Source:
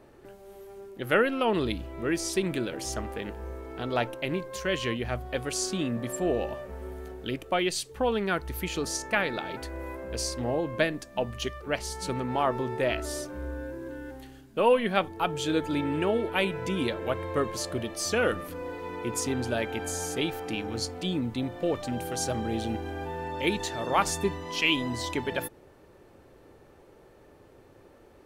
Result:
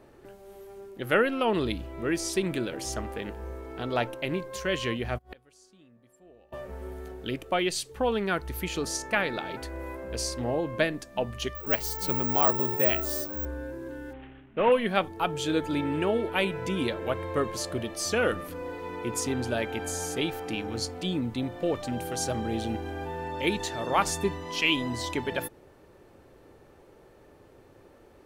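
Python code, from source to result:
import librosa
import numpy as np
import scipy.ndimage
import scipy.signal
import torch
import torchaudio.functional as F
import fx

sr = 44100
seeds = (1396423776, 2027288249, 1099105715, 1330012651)

y = fx.gate_flip(x, sr, shuts_db=-28.0, range_db=-28, at=(5.17, 6.52), fade=0.02)
y = fx.resample_bad(y, sr, factor=2, down='none', up='zero_stuff', at=(11.55, 13.45))
y = fx.cvsd(y, sr, bps=16000, at=(14.13, 14.72))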